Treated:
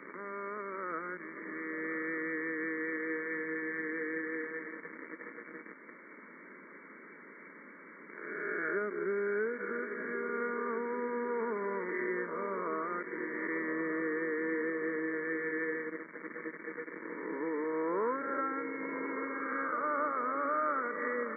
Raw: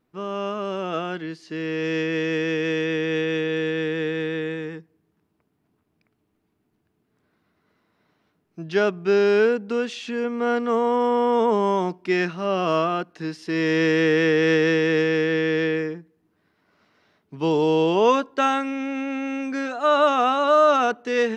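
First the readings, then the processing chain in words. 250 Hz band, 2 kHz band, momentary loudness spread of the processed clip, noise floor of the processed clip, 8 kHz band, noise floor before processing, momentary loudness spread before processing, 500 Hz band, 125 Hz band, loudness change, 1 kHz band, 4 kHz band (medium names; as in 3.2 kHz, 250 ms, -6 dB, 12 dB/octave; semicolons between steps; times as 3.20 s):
-14.0 dB, -8.0 dB, 17 LU, -53 dBFS, no reading, -72 dBFS, 10 LU, -14.5 dB, -24.0 dB, -13.5 dB, -13.0 dB, under -40 dB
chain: reverse spectral sustain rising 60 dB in 2.04 s; low-pass that closes with the level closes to 1.2 kHz, closed at -16.5 dBFS; tilt shelf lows -9.5 dB, about 690 Hz; echo that smears into a reverb 1111 ms, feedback 59%, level -8.5 dB; crossover distortion -34 dBFS; bit crusher 5-bit; added noise white -38 dBFS; distance through air 280 m; static phaser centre 310 Hz, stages 4; FFT band-pass 160–2300 Hz; three bands compressed up and down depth 40%; trim -7 dB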